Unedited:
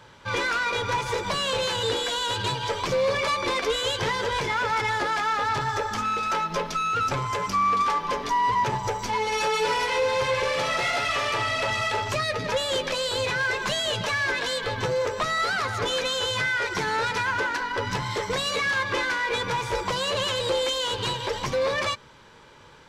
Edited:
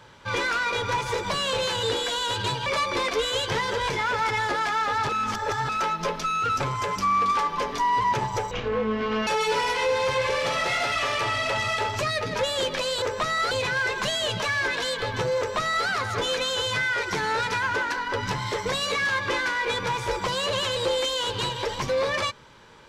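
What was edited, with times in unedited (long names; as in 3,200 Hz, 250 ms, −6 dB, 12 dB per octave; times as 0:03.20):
0:02.66–0:03.17: remove
0:05.60–0:06.20: reverse
0:09.02–0:09.40: play speed 50%
0:15.02–0:15.51: duplicate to 0:13.15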